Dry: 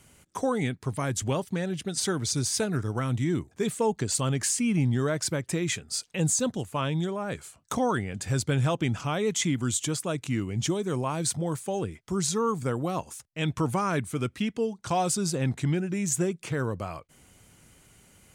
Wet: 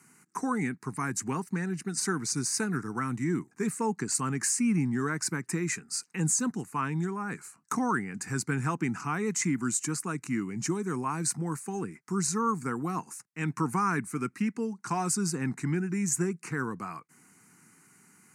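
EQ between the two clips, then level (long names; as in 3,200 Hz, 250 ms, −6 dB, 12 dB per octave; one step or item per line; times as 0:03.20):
high-pass filter 170 Hz 24 dB per octave
Bessel low-pass filter 11,000 Hz, order 2
phaser with its sweep stopped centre 1,400 Hz, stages 4
+2.5 dB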